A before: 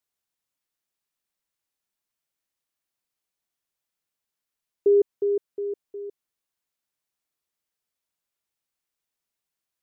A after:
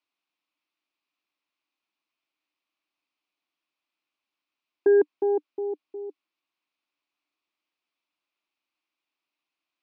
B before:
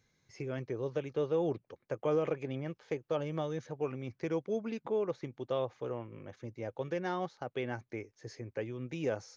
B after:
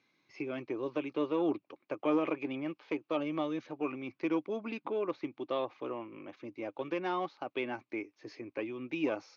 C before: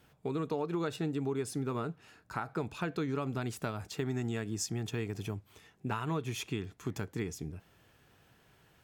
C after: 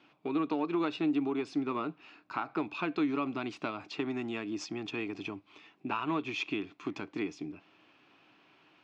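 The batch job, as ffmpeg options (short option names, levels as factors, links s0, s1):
-af "aeval=exprs='0.224*(cos(1*acos(clip(val(0)/0.224,-1,1)))-cos(1*PI/2))+0.0224*(cos(4*acos(clip(val(0)/0.224,-1,1)))-cos(4*PI/2))':c=same,highpass=280,equalizer=f=300:t=q:w=4:g=10,equalizer=f=470:t=q:w=4:g=-7,equalizer=f=1100:t=q:w=4:g=5,equalizer=f=1700:t=q:w=4:g=-5,equalizer=f=2500:t=q:w=4:g=8,lowpass=f=4700:w=0.5412,lowpass=f=4700:w=1.3066,volume=1.26"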